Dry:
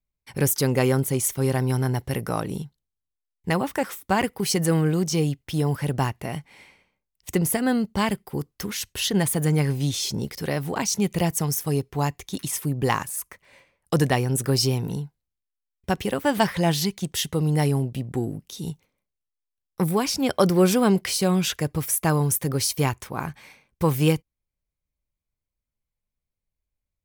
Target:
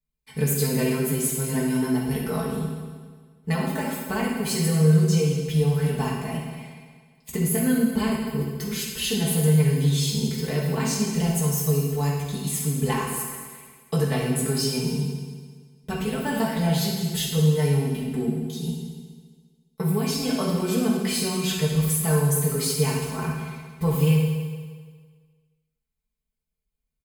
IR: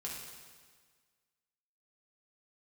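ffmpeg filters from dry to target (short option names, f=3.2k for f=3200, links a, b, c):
-filter_complex "[0:a]equalizer=f=1.1k:t=o:w=2:g=-3.5,bandreject=f=5.7k:w=6.8,aecho=1:1:4.6:0.83,acompressor=threshold=-19dB:ratio=6[a];[1:a]atrim=start_sample=2205[b];[a][b]afir=irnorm=-1:irlink=0"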